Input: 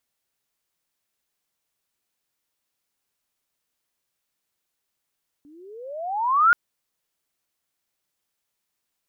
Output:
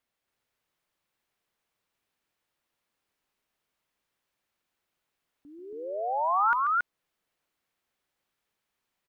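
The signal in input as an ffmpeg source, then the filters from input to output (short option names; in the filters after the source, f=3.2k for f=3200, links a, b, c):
-f lavfi -i "aevalsrc='pow(10,(-11+36*(t/1.08-1))/20)*sin(2*PI*281*1.08/(28.5*log(2)/12)*(exp(28.5*log(2)/12*t/1.08)-1))':d=1.08:s=44100"
-af "bass=f=250:g=-1,treble=f=4k:g=-10,acompressor=threshold=-30dB:ratio=2,aecho=1:1:137|277:0.316|0.891"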